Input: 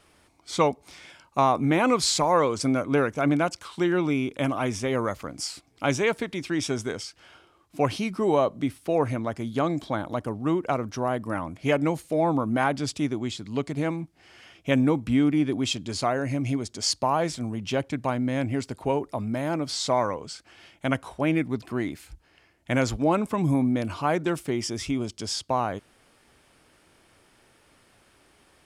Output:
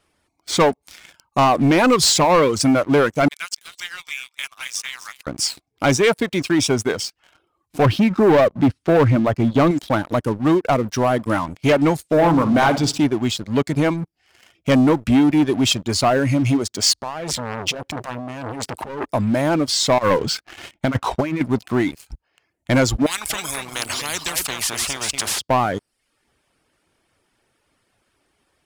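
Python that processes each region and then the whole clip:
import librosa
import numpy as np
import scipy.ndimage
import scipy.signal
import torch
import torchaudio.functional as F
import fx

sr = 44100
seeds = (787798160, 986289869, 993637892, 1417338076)

y = fx.chain(x, sr, fx.bessel_highpass(hz=2600.0, order=4),
    fx.echo_single(ms=257, db=-10.5), at=(3.28, 5.27))
y = fx.chain(y, sr, fx.lowpass(hz=3700.0, slope=12),
    fx.low_shelf(hz=360.0, db=7.0), at=(7.85, 9.71))
y = fx.chain(y, sr, fx.lowpass(hz=8400.0, slope=12),
    fx.room_flutter(wall_m=10.3, rt60_s=0.55), at=(12.07, 13.05))
y = fx.chain(y, sr, fx.over_compress(threshold_db=-33.0, ratio=-1.0),
    fx.transformer_sat(knee_hz=2300.0), at=(16.98, 19.07))
y = fx.chain(y, sr, fx.air_absorb(metres=90.0),
    fx.over_compress(threshold_db=-29.0, ratio=-0.5),
    fx.leveller(passes=1), at=(19.98, 21.41))
y = fx.chain(y, sr, fx.echo_single(ms=238, db=-11.5),
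    fx.spectral_comp(ratio=10.0), at=(23.06, 25.39))
y = fx.dereverb_blind(y, sr, rt60_s=0.63)
y = fx.leveller(y, sr, passes=3)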